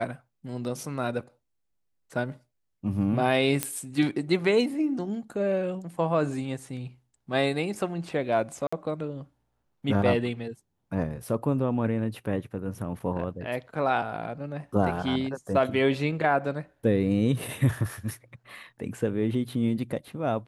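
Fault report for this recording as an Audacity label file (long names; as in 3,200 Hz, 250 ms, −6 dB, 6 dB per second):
3.630000	3.630000	click −9 dBFS
8.670000	8.720000	drop-out 55 ms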